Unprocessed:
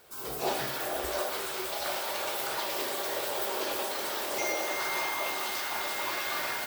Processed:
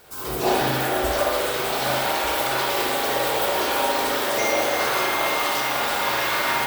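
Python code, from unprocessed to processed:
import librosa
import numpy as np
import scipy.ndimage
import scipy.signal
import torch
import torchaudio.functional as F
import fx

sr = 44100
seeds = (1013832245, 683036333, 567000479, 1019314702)

y = fx.low_shelf(x, sr, hz=74.0, db=11.0)
y = y + 10.0 ** (-9.5 / 20.0) * np.pad(y, (int(1200 * sr / 1000.0), 0))[:len(y)]
y = fx.rev_spring(y, sr, rt60_s=1.3, pass_ms=(38, 54), chirp_ms=25, drr_db=-2.0)
y = F.gain(torch.from_numpy(y), 6.5).numpy()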